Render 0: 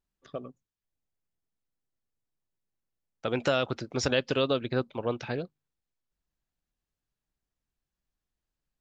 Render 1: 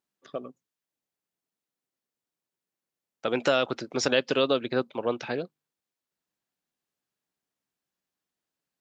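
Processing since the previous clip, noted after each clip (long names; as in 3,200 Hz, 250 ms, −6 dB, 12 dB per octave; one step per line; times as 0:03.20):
high-pass filter 210 Hz 12 dB per octave
level +3 dB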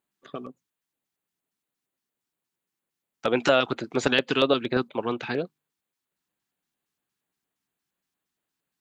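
auto-filter notch square 4.3 Hz 560–5,400 Hz
level +4 dB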